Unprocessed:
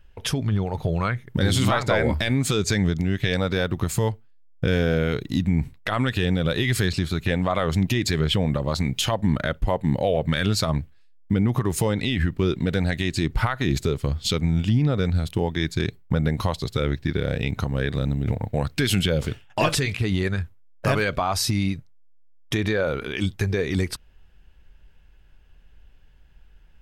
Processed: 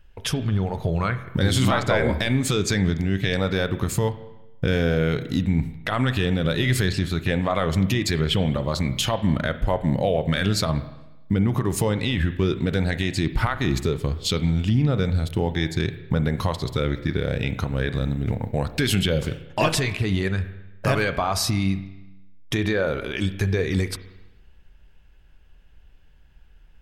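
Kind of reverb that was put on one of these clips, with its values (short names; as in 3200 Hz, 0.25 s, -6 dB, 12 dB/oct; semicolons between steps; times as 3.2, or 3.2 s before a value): spring tank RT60 1 s, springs 31/47 ms, chirp 60 ms, DRR 11 dB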